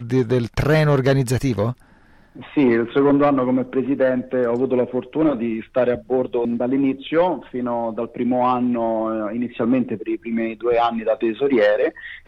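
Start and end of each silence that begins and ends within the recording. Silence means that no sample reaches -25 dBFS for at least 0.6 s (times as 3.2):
1.72–2.57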